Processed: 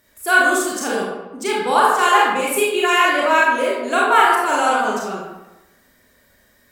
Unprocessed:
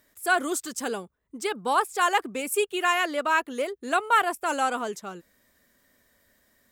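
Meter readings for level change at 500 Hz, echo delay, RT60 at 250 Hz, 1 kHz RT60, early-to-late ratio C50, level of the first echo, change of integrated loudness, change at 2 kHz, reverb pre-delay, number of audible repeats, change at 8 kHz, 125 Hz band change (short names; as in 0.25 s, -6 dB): +9.5 dB, none, 1.0 s, 1.0 s, -0.5 dB, none, +9.5 dB, +10.5 dB, 28 ms, none, +7.0 dB, n/a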